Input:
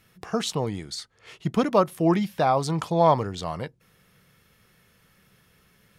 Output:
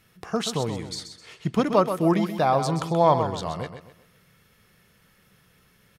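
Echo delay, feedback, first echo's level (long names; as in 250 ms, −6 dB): 129 ms, 35%, −9.0 dB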